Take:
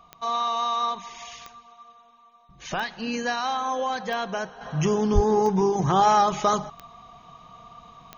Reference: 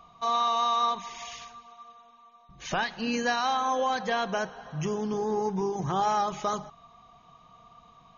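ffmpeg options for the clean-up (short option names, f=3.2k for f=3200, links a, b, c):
-filter_complex "[0:a]adeclick=t=4,asplit=3[a][b][c];[a]afade=t=out:st=5.14:d=0.02[d];[b]highpass=f=140:w=0.5412,highpass=f=140:w=1.3066,afade=t=in:st=5.14:d=0.02,afade=t=out:st=5.26:d=0.02[e];[c]afade=t=in:st=5.26:d=0.02[f];[d][e][f]amix=inputs=3:normalize=0,asetnsamples=n=441:p=0,asendcmd='4.61 volume volume -7.5dB',volume=0dB"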